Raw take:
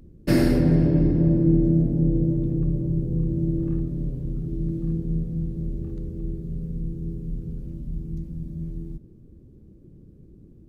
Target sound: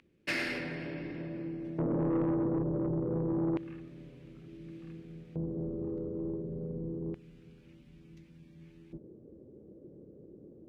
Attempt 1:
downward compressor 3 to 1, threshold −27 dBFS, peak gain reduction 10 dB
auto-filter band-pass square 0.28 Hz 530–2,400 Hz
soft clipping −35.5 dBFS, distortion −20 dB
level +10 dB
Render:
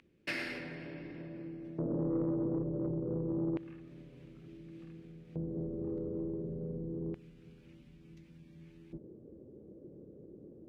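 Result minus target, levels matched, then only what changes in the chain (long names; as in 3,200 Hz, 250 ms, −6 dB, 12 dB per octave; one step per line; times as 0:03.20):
downward compressor: peak gain reduction +6 dB
change: downward compressor 3 to 1, threshold −18 dBFS, peak gain reduction 4 dB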